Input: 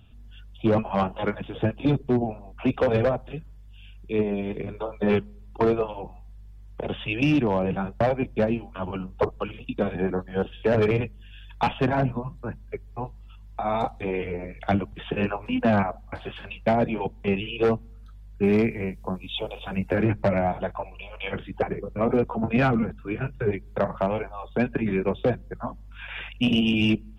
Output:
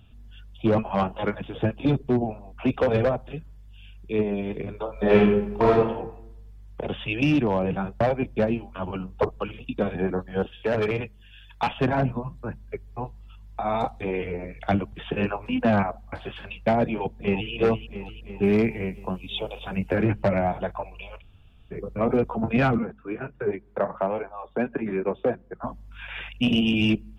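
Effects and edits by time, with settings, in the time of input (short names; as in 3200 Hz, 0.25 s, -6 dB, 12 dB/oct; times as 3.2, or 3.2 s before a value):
4.92–5.71 reverb throw, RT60 0.82 s, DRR -4.5 dB
10.46–11.78 low shelf 480 Hz -6 dB
16.85–17.52 echo throw 0.34 s, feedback 65%, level -9 dB
21.19–21.73 room tone, crossfade 0.06 s
22.78–25.64 three-band isolator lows -13 dB, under 210 Hz, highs -16 dB, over 2200 Hz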